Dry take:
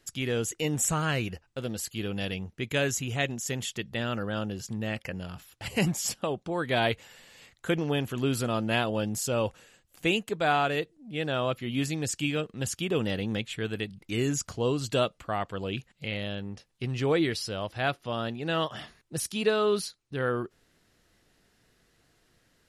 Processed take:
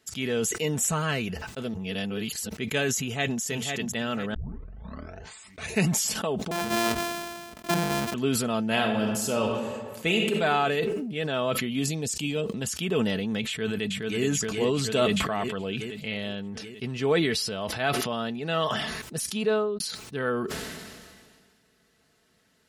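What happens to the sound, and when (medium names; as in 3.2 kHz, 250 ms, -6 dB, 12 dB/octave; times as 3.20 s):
1.74–2.49 s: reverse
2.99–3.41 s: echo throw 500 ms, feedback 40%, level -5 dB
4.34 s: tape start 1.55 s
6.51–8.14 s: sorted samples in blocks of 128 samples
8.65–10.34 s: reverb throw, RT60 1.3 s, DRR 3.5 dB
11.79–12.61 s: peaking EQ 1.6 kHz -10 dB 1 oct
13.48–14.22 s: echo throw 420 ms, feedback 60%, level -2.5 dB
15.93–18.26 s: short-mantissa float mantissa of 8-bit
19.25–19.80 s: studio fade out
whole clip: high-pass 74 Hz; comb 4.6 ms, depth 48%; decay stretcher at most 31 dB/s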